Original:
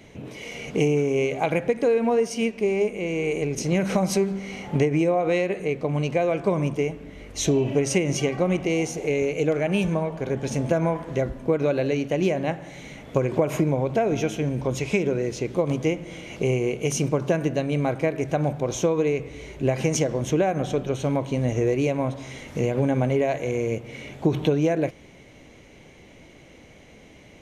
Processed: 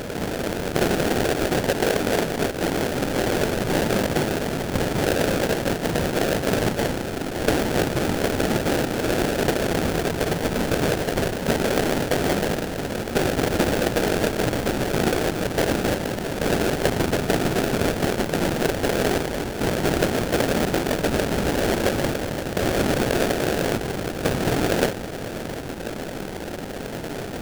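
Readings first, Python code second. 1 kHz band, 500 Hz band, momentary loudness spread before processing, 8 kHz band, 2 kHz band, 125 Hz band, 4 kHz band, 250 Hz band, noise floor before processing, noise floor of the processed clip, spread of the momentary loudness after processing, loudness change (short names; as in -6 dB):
+5.0 dB, +0.5 dB, 7 LU, +3.5 dB, +6.5 dB, -0.5 dB, +9.0 dB, +1.5 dB, -49 dBFS, -31 dBFS, 6 LU, +1.0 dB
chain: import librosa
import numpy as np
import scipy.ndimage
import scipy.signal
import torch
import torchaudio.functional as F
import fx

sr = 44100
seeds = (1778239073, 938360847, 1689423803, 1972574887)

y = fx.bin_compress(x, sr, power=0.4)
y = fx.whisperise(y, sr, seeds[0])
y = fx.sample_hold(y, sr, seeds[1], rate_hz=1100.0, jitter_pct=20)
y = y * 10.0 ** (-5.5 / 20.0)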